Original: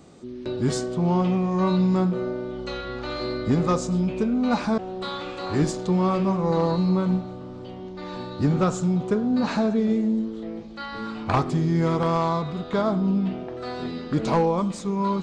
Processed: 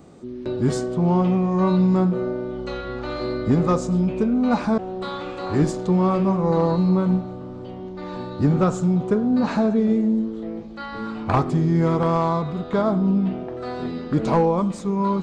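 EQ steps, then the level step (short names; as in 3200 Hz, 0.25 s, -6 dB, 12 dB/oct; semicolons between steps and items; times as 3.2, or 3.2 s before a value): bell 4700 Hz -6.5 dB 2.5 oct; +3.0 dB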